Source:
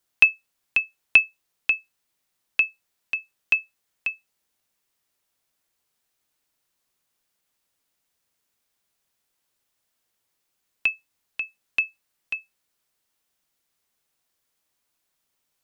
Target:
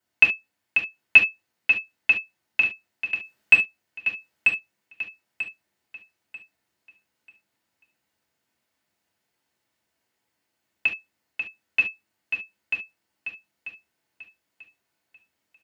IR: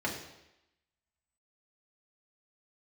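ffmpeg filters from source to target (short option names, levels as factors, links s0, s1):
-filter_complex "[0:a]asettb=1/sr,asplit=3[s0][s1][s2];[s0]atrim=end=3.174[s3];[s1]atrim=start=3.17:end=3.58,asetpts=PTS-STARTPTS,afade=t=in:d=0.004:c=qsin,afade=t=out:st=0.406:d=0.004:c=qsin,acontrast=71[s4];[s2]atrim=start=3.576[s5];[s3][s4]acrossfade=d=0.004:c1=hsin:c2=qsin[s6];[s6][s5]acrossfade=d=0.004:c1=qsin:c2=hsin,aecho=1:1:940|1880|2820|3760:0.562|0.163|0.0473|0.0137[s7];[1:a]atrim=start_sample=2205,atrim=end_sample=3528[s8];[s7][s8]afir=irnorm=-1:irlink=0,volume=0.631"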